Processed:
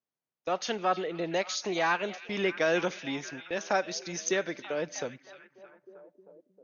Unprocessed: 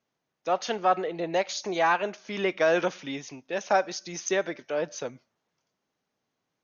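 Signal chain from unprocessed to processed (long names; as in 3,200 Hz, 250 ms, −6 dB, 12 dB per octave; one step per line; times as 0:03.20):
dynamic equaliser 770 Hz, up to −6 dB, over −35 dBFS, Q 0.9
noise gate −43 dBFS, range −15 dB
echo through a band-pass that steps 312 ms, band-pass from 3,000 Hz, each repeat −0.7 octaves, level −10 dB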